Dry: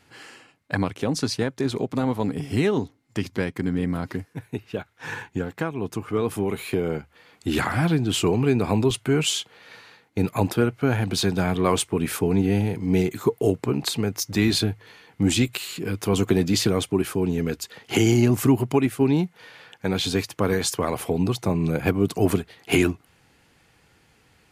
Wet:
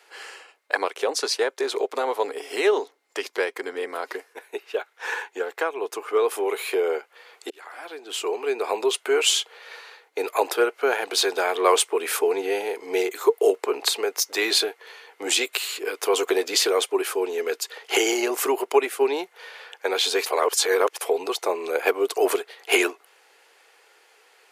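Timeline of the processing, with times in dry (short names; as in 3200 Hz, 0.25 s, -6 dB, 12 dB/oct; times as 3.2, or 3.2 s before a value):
7.5–9.23 fade in
20.26–21.01 reverse
whole clip: elliptic high-pass 410 Hz, stop band 70 dB; gain +5 dB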